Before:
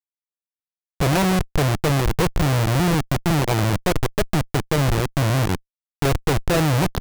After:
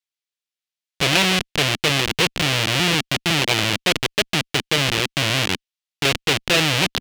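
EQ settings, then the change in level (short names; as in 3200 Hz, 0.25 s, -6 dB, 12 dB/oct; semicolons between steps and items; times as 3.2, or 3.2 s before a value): weighting filter D; dynamic EQ 2900 Hz, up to +4 dB, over -35 dBFS, Q 2.3; -1.5 dB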